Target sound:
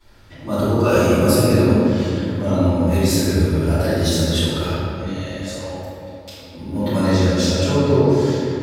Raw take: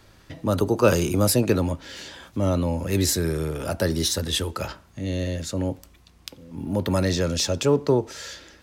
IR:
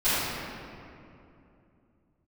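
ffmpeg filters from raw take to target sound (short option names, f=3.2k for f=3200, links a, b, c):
-filter_complex "[0:a]asettb=1/sr,asplit=3[a][b][c];[a]atrim=end=5.074[d];[b]atrim=start=5.07:end=6.38,asetpts=PTS-STARTPTS,afade=t=in:d=0.004:c=qsin,afade=t=out:st=1.306:d=0.004:c=qsin,highpass=f=530:w=0.5412,highpass=f=530:w=1.3066[e];[c]atrim=start=6.376[f];[d][e]acrossfade=d=0.004:c1=hsin:c2=qsin[g];[g][f]acrossfade=d=0.004:c1=qsin:c2=hsin[h];[1:a]atrim=start_sample=2205,asetrate=41895,aresample=44100[i];[h][i]afir=irnorm=-1:irlink=0,volume=-11dB"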